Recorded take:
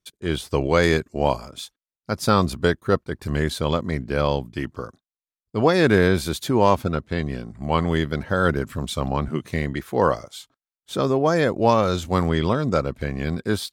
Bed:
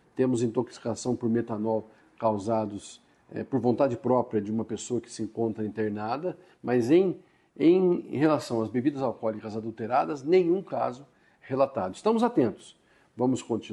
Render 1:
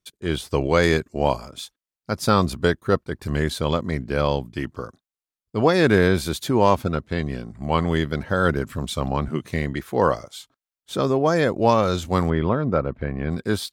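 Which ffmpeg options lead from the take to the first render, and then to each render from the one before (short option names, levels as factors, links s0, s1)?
-filter_complex "[0:a]asettb=1/sr,asplit=3[s0][s1][s2];[s0]atrim=end=12.304[s3];[s1]atrim=start=12.3:end=13.31,asetpts=PTS-STARTPTS,afade=t=in:d=0.004:c=qsin,afade=t=out:st=1.006:d=0.004:c=qsin,lowpass=1900[s4];[s2]atrim=start=13.306[s5];[s3][s4]acrossfade=d=0.004:c1=hsin:c2=qsin[s6];[s6][s5]acrossfade=d=0.004:c1=qsin:c2=hsin"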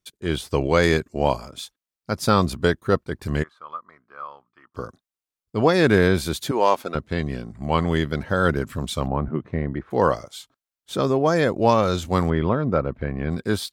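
-filter_complex "[0:a]asplit=3[s0][s1][s2];[s0]afade=t=out:st=3.42:d=0.02[s3];[s1]bandpass=f=1200:t=q:w=9.5,afade=t=in:st=3.42:d=0.02,afade=t=out:st=4.74:d=0.02[s4];[s2]afade=t=in:st=4.74:d=0.02[s5];[s3][s4][s5]amix=inputs=3:normalize=0,asettb=1/sr,asplit=3[s6][s7][s8];[s6]atrim=end=6.514[s9];[s7]atrim=start=6.51:end=6.95,asetpts=PTS-STARTPTS,afade=t=in:d=0.004:c=qsin,afade=t=out:st=0.436:d=0.004:c=qsin,highpass=410[s10];[s8]atrim=start=6.946[s11];[s9][s10]acrossfade=d=0.004:c1=hsin:c2=qsin[s12];[s12][s11]acrossfade=d=0.004:c1=qsin:c2=hsin,asplit=3[s13][s14][s15];[s13]afade=t=out:st=9.06:d=0.02[s16];[s14]lowpass=1300,afade=t=in:st=9.06:d=0.02,afade=t=out:st=9.9:d=0.02[s17];[s15]afade=t=in:st=9.9:d=0.02[s18];[s16][s17][s18]amix=inputs=3:normalize=0"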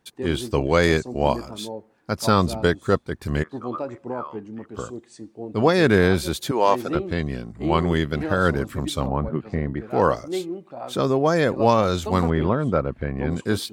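-filter_complex "[1:a]volume=0.473[s0];[0:a][s0]amix=inputs=2:normalize=0"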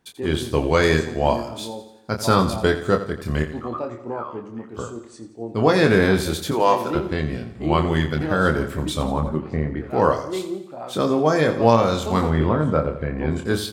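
-filter_complex "[0:a]asplit=2[s0][s1];[s1]adelay=26,volume=0.501[s2];[s0][s2]amix=inputs=2:normalize=0,aecho=1:1:86|172|258|344|430:0.237|0.123|0.0641|0.0333|0.0173"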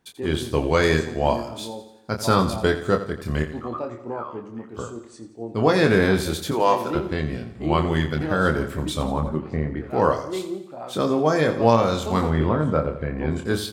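-af "volume=0.841"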